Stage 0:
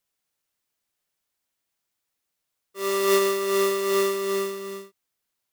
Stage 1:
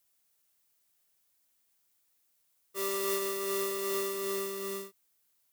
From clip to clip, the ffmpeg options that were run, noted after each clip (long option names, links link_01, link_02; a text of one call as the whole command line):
ffmpeg -i in.wav -af "highshelf=frequency=7100:gain=10.5,acompressor=threshold=-33dB:ratio=3" out.wav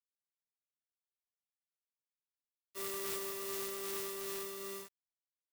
ffmpeg -i in.wav -af "lowshelf=frequency=280:gain=-4.5,acrusher=bits=6:mix=0:aa=0.000001,aeval=exprs='(mod(16.8*val(0)+1,2)-1)/16.8':channel_layout=same,volume=-6.5dB" out.wav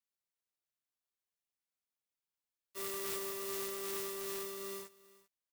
ffmpeg -i in.wav -af "aecho=1:1:393:0.1" out.wav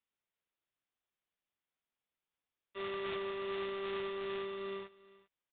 ffmpeg -i in.wav -af "aresample=8000,aresample=44100,volume=4dB" out.wav